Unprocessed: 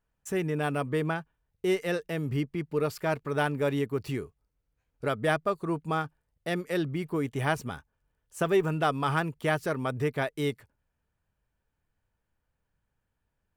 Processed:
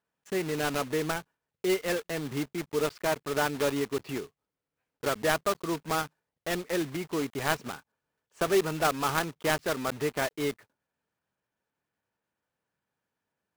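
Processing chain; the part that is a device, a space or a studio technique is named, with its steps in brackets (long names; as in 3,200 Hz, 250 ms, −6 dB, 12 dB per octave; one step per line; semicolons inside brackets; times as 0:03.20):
early digital voice recorder (band-pass filter 210–3,500 Hz; one scale factor per block 3 bits)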